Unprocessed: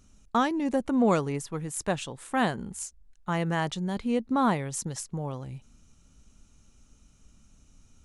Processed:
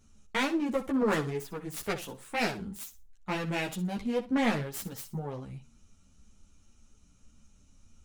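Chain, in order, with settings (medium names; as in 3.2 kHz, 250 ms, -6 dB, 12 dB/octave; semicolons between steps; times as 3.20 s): self-modulated delay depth 0.44 ms; flutter echo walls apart 10.6 m, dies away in 0.27 s; three-phase chorus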